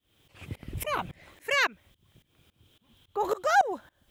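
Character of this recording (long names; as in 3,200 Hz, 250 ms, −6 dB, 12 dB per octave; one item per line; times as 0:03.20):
a quantiser's noise floor 12 bits, dither triangular
tremolo saw up 3.6 Hz, depth 95%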